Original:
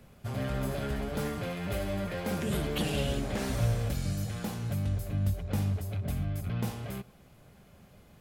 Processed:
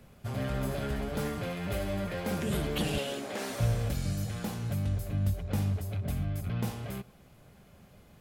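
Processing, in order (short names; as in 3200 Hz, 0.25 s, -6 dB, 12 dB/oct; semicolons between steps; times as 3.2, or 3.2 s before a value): 2.98–3.6 HPF 320 Hz 12 dB/oct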